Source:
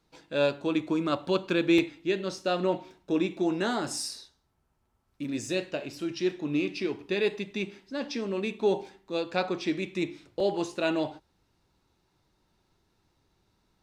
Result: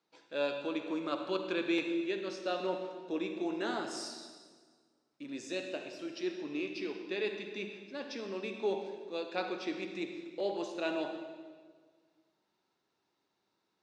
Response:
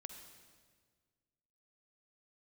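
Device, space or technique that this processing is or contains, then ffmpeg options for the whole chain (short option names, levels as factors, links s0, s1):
supermarket ceiling speaker: -filter_complex "[0:a]highpass=300,lowpass=6500[s0];[1:a]atrim=start_sample=2205[s1];[s0][s1]afir=irnorm=-1:irlink=0,volume=0.891"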